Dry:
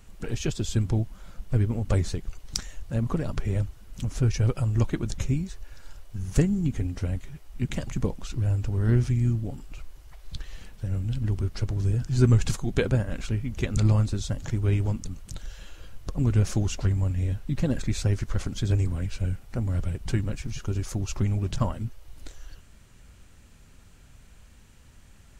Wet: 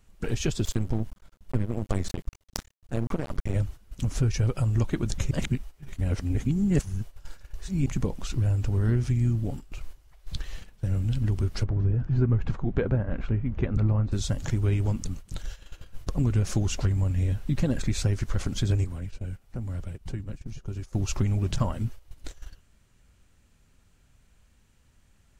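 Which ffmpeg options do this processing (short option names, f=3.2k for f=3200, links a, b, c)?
-filter_complex "[0:a]asettb=1/sr,asplit=3[a][b][c];[a]atrim=end=0.644[d];[b]atrim=start=0.64:end=3.54,asetpts=PTS-STARTPTS,afade=t=in:d=0.004:c=qsin,afade=t=out:st=2.896:d=0.004:c=qsin,aeval=exprs='max(val(0),0)':c=same[e];[c]atrim=start=3.536[f];[d][e]acrossfade=d=0.004:c1=hsin:c2=qsin[g];[g][f]acrossfade=d=0.004:c1=qsin:c2=hsin,asplit=3[h][i][j];[h]afade=t=out:st=11.63:d=0.02[k];[i]lowpass=1.6k,afade=t=in:st=11.63:d=0.02,afade=t=out:st=14.11:d=0.02[l];[j]afade=t=in:st=14.11:d=0.02[m];[k][l][m]amix=inputs=3:normalize=0,asettb=1/sr,asplit=3[n][o][p];[n]atrim=end=18.844[q];[o]atrim=start=18.84:end=20.93,asetpts=PTS-STARTPTS,afade=t=in:d=0.004:c=qsin,afade=t=out:st=2.086:d=0.004:c=qsin,acrossover=split=320|740[r][s][t];[r]acompressor=threshold=-35dB:ratio=4[u];[s]acompressor=threshold=-52dB:ratio=4[v];[t]acompressor=threshold=-56dB:ratio=4[w];[u][v][w]amix=inputs=3:normalize=0[x];[p]atrim=start=20.926[y];[q][x]acrossfade=d=0.004:c1=hsin:c2=qsin[z];[z][y]acrossfade=d=0.004:c1=qsin:c2=hsin,asplit=3[aa][ab][ac];[aa]atrim=end=5.312[ad];[ab]atrim=start=5.308:end=7.862,asetpts=PTS-STARTPTS,areverse[ae];[ac]atrim=start=7.858[af];[ad][ae]acrossfade=d=0.004:c1=hsin:c2=hsin[ag];[ag][af]acrossfade=d=0.004:c1=hsin:c2=hsin,agate=range=-12dB:threshold=-37dB:ratio=16:detection=peak,acompressor=threshold=-24dB:ratio=3,volume=3dB"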